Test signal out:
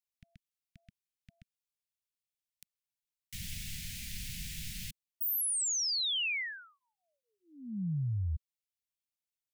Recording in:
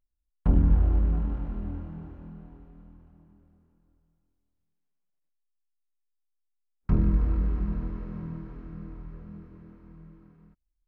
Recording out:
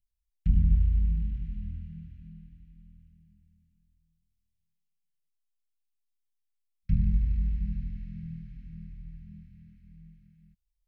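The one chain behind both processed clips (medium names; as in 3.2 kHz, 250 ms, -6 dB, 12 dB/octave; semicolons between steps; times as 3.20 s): inverse Chebyshev band-stop 370–1100 Hz, stop band 50 dB; trim -1.5 dB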